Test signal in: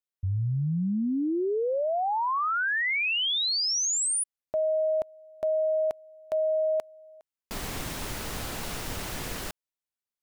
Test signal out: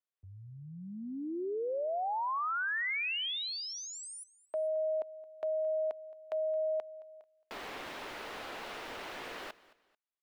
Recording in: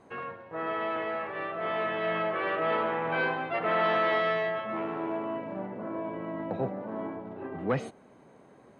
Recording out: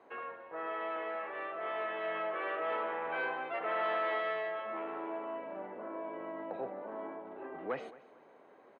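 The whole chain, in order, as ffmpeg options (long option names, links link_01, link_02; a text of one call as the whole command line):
ffmpeg -i in.wav -filter_complex "[0:a]acrossover=split=310 3900:gain=0.0794 1 0.126[link_01][link_02][link_03];[link_01][link_02][link_03]amix=inputs=3:normalize=0,asplit=2[link_04][link_05];[link_05]acompressor=threshold=-41dB:ratio=6:attack=7.1:release=54:knee=6,volume=2dB[link_06];[link_04][link_06]amix=inputs=2:normalize=0,aecho=1:1:220|440:0.1|0.031,volume=-8.5dB" out.wav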